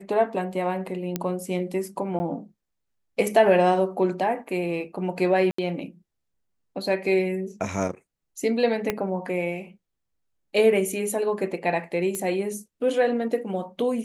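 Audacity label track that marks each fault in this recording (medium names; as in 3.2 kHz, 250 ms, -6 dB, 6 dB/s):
1.160000	1.160000	pop -11 dBFS
2.190000	2.200000	dropout 10 ms
5.510000	5.580000	dropout 74 ms
8.900000	8.900000	pop -10 dBFS
12.150000	12.150000	pop -17 dBFS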